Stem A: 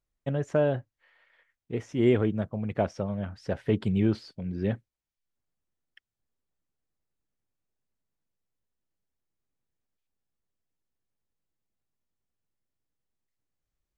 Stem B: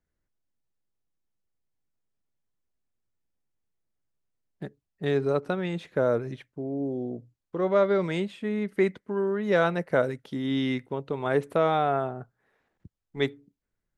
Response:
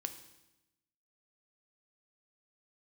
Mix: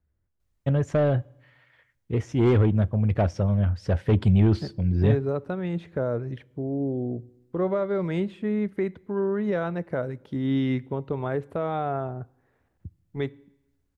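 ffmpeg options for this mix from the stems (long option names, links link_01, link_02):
-filter_complex "[0:a]aeval=exprs='0.299*(cos(1*acos(clip(val(0)/0.299,-1,1)))-cos(1*PI/2))+0.0422*(cos(5*acos(clip(val(0)/0.299,-1,1)))-cos(5*PI/2))':channel_layout=same,asoftclip=type=tanh:threshold=-11dB,adelay=400,volume=-2dB,asplit=2[link_01][link_02];[link_02]volume=-14.5dB[link_03];[1:a]highshelf=frequency=2700:gain=-11.5,alimiter=limit=-19.5dB:level=0:latency=1:release=439,volume=0dB,asplit=2[link_04][link_05];[link_05]volume=-12dB[link_06];[2:a]atrim=start_sample=2205[link_07];[link_03][link_06]amix=inputs=2:normalize=0[link_08];[link_08][link_07]afir=irnorm=-1:irlink=0[link_09];[link_01][link_04][link_09]amix=inputs=3:normalize=0,equalizer=frequency=80:width_type=o:width=1.2:gain=14"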